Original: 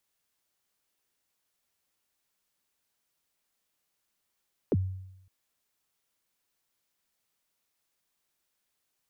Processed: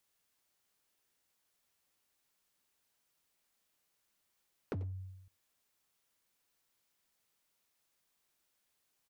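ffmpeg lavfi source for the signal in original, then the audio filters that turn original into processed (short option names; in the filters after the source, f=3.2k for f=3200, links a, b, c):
-f lavfi -i "aevalsrc='0.1*pow(10,-3*t/0.85)*sin(2*PI*(530*0.037/log(94/530)*(exp(log(94/530)*min(t,0.037)/0.037)-1)+94*max(t-0.037,0)))':d=0.56:s=44100"
-filter_complex "[0:a]asoftclip=type=hard:threshold=-28.5dB,acompressor=threshold=-38dB:ratio=6,asplit=2[a][b];[b]adelay=90,highpass=300,lowpass=3.4k,asoftclip=type=hard:threshold=-38dB,volume=-10dB[c];[a][c]amix=inputs=2:normalize=0"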